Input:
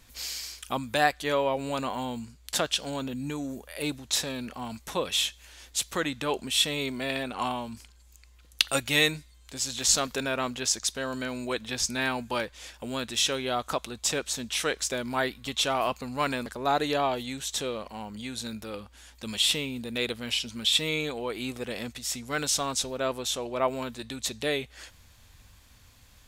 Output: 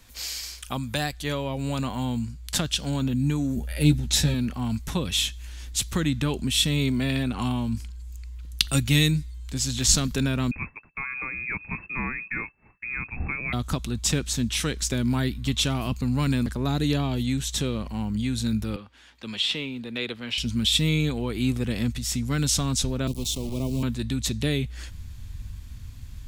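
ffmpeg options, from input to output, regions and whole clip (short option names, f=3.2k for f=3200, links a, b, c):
-filter_complex "[0:a]asettb=1/sr,asplit=3[a][b][c];[a]atrim=end=3.564[d];[b]atrim=start=3.56:end=4.34,asetpts=PTS-STARTPTS,afade=t=in:d=0.004:c=qsin,afade=t=out:st=0.776:d=0.004:c=qsin,asuperstop=centerf=1100:order=8:qfactor=4.5,lowshelf=f=180:g=5.5,asplit=2[e][f];[f]adelay=13,volume=-4dB[g];[e][g]amix=inputs=2:normalize=0,atrim=end_sample=34398[h];[c]atrim=start=4.336[i];[d][h]acrossfade=d=0.004:c1=hsin:c2=qsin[j];[j][i]acrossfade=d=0.004:c1=qsin:c2=hsin,asettb=1/sr,asplit=3[k][l][m];[k]atrim=end=10.514[n];[l]atrim=start=10.51:end=13.53,asetpts=PTS-STARTPTS,afade=t=in:d=0.004:c=qsin,afade=t=out:st=3.016:d=0.004:c=qsin,lowpass=f=2.3k:t=q:w=0.5098,lowpass=f=2.3k:t=q:w=0.6013,lowpass=f=2.3k:t=q:w=0.9,lowpass=f=2.3k:t=q:w=2.563,afreqshift=-2700,agate=range=-33dB:threshold=-42dB:ratio=3:release=100:detection=peak[o];[m]atrim=start=13.526[p];[n][o]acrossfade=d=0.004:c1=hsin:c2=qsin[q];[q][p]acrossfade=d=0.004:c1=qsin:c2=hsin,asettb=1/sr,asplit=3[r][s][t];[r]atrim=end=18.764[u];[s]atrim=start=18.76:end=20.38,asetpts=PTS-STARTPTS,afade=t=in:d=0.004:c=qsin,afade=t=out:st=1.616:d=0.004:c=qsin,highpass=f=79:w=0.5412,highpass=f=79:w=1.3066,acrossover=split=340 4400:gain=0.141 1 0.158[v][w][x];[v][w][x]amix=inputs=3:normalize=0,acrossover=split=8500[y][z];[z]acompressor=threshold=-56dB:ratio=4:attack=1:release=60[aa];[y][aa]amix=inputs=2:normalize=0[ab];[t]atrim=start=20.376[ac];[u][ab]acrossfade=d=0.004:c1=hsin:c2=qsin[ad];[ad][ac]acrossfade=d=0.004:c1=qsin:c2=hsin,asettb=1/sr,asplit=3[ae][af][ag];[ae]atrim=end=23.074[ah];[af]atrim=start=23.07:end=23.83,asetpts=PTS-STARTPTS,afade=t=in:d=0.004:c=qsin,afade=t=out:st=0.756:d=0.004:c=qsin,aeval=exprs='val(0)*gte(abs(val(0)),0.0158)':c=same,acrossover=split=430|3000[ai][aj][ak];[aj]acompressor=threshold=-43dB:ratio=4:attack=3.2:release=140:knee=2.83:detection=peak[al];[ai][al][ak]amix=inputs=3:normalize=0,asuperstop=centerf=1600:order=4:qfactor=1.1[am];[ag]atrim=start=23.826[an];[ah][am]acrossfade=d=0.004:c1=hsin:c2=qsin[ao];[ao][an]acrossfade=d=0.004:c1=qsin:c2=hsin,acrossover=split=350|3000[ap][aq][ar];[aq]acompressor=threshold=-32dB:ratio=6[as];[ap][as][ar]amix=inputs=3:normalize=0,asubboost=boost=7.5:cutoff=200,volume=2.5dB"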